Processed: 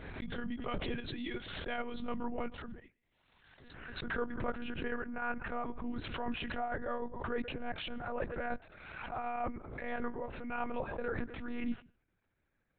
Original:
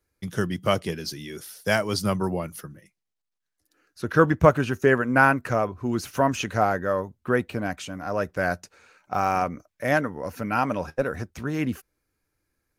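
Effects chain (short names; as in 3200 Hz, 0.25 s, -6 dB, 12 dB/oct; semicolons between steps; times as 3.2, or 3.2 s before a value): HPF 45 Hz 24 dB/oct; reverse; compressor 10:1, threshold -32 dBFS, peak gain reduction 22.5 dB; reverse; chopper 6.7 Hz, depth 60%, duty 70%; on a send at -23 dB: reverb RT60 0.35 s, pre-delay 0.101 s; on the sum: monotone LPC vocoder at 8 kHz 240 Hz; backwards sustainer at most 42 dB/s; gain -1 dB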